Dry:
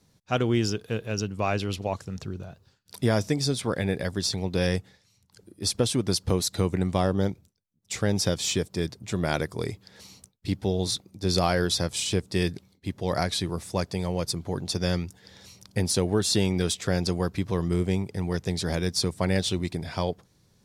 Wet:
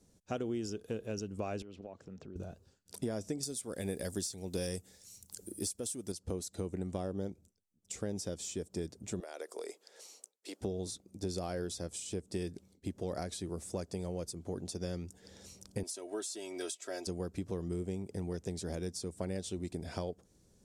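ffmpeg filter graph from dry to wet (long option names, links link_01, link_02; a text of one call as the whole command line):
ffmpeg -i in.wav -filter_complex "[0:a]asettb=1/sr,asplit=3[link_01][link_02][link_03];[link_01]atrim=end=1.624[link_04];[link_02]atrim=start=1.62:end=2.36,asetpts=PTS-STARTPTS,afade=type=in:duration=0.004:curve=qsin,afade=type=out:start_time=0.736:duration=0.004:curve=qsin,highpass=130,lowpass=3200,acompressor=threshold=-43dB:ratio=4:attack=3.2:release=140:knee=1:detection=peak[link_05];[link_03]atrim=start=2.356[link_06];[link_04][link_05]acrossfade=duration=0.004:curve1=hsin:curve2=qsin[link_07];[link_07][link_06]acrossfade=duration=0.004:curve1=qsin:curve2=hsin,asettb=1/sr,asplit=3[link_08][link_09][link_10];[link_08]atrim=end=3.434[link_11];[link_09]atrim=start=3.43:end=6.12,asetpts=PTS-STARTPTS,afade=type=in:duration=0.004:curve=qsin,afade=type=out:start_time=2.686:duration=0.004:curve=qsin,aemphasis=mode=production:type=75fm,acontrast=75[link_12];[link_10]atrim=start=6.116[link_13];[link_11][link_12]acrossfade=duration=0.004:curve1=hsin:curve2=qsin[link_14];[link_14][link_13]acrossfade=duration=0.004:curve1=qsin:curve2=hsin,asettb=1/sr,asplit=3[link_15][link_16][link_17];[link_15]atrim=end=9.204[link_18];[link_16]atrim=start=9.2:end=10.61,asetpts=PTS-STARTPTS,afade=type=in:duration=0.004:curve=qsin,afade=type=out:start_time=1.406:duration=0.004:curve=qsin,highpass=frequency=440:width=0.5412,highpass=frequency=440:width=1.3066,acompressor=threshold=-34dB:ratio=8:attack=3.2:release=140:knee=1:detection=peak[link_19];[link_17]atrim=start=10.606[link_20];[link_18][link_19]acrossfade=duration=0.004:curve1=hsin:curve2=qsin[link_21];[link_21][link_20]acrossfade=duration=0.004:curve1=qsin:curve2=hsin,asettb=1/sr,asplit=3[link_22][link_23][link_24];[link_22]atrim=end=15.834[link_25];[link_23]atrim=start=15.83:end=17.07,asetpts=PTS-STARTPTS,afade=type=in:duration=0.004:curve=qsin,afade=type=out:start_time=1.236:duration=0.004:curve=qsin,highpass=570,aecho=1:1:3.1:0.79,atrim=end_sample=54684[link_26];[link_24]atrim=start=17.066[link_27];[link_25][link_26]acrossfade=duration=0.004:curve1=hsin:curve2=qsin[link_28];[link_28][link_27]acrossfade=duration=0.004:curve1=qsin:curve2=hsin,equalizer=frequency=125:width_type=o:width=1:gain=-11,equalizer=frequency=1000:width_type=o:width=1:gain=-9,equalizer=frequency=2000:width_type=o:width=1:gain=-8,equalizer=frequency=4000:width_type=o:width=1:gain=-8,equalizer=frequency=8000:width_type=o:width=1:gain=9,acompressor=threshold=-37dB:ratio=4,highshelf=frequency=5200:gain=-11,volume=2dB" out.wav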